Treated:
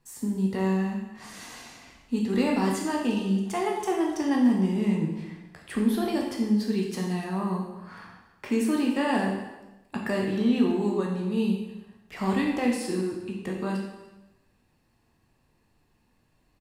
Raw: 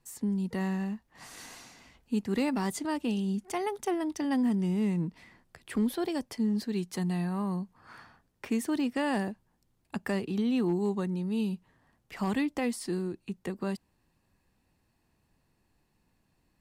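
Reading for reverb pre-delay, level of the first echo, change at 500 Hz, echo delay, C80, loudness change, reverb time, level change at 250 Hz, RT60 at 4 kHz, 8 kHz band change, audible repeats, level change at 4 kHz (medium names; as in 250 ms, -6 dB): 6 ms, -20.5 dB, +5.5 dB, 295 ms, 5.5 dB, +4.5 dB, 1.0 s, +4.5 dB, 0.95 s, +2.5 dB, 1, +4.5 dB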